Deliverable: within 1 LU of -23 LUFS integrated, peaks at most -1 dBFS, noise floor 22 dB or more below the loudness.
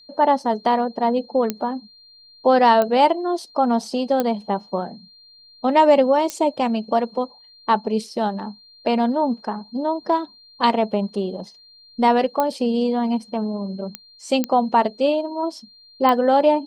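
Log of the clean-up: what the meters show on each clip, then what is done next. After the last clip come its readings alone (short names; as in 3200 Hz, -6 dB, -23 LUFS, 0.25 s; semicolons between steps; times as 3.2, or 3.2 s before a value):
clicks 8; steady tone 4200 Hz; tone level -47 dBFS; loudness -20.5 LUFS; peak -4.5 dBFS; loudness target -23.0 LUFS
-> de-click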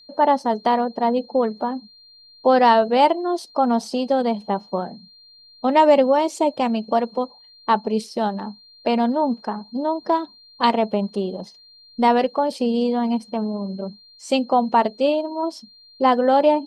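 clicks 0; steady tone 4200 Hz; tone level -47 dBFS
-> notch 4200 Hz, Q 30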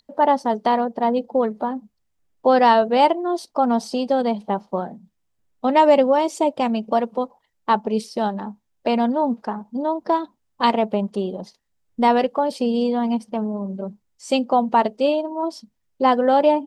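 steady tone none; loudness -20.5 LUFS; peak -4.5 dBFS; loudness target -23.0 LUFS
-> gain -2.5 dB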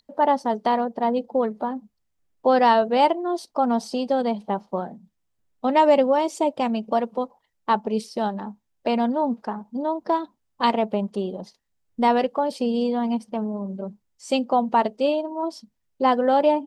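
loudness -23.0 LUFS; peak -7.0 dBFS; noise floor -74 dBFS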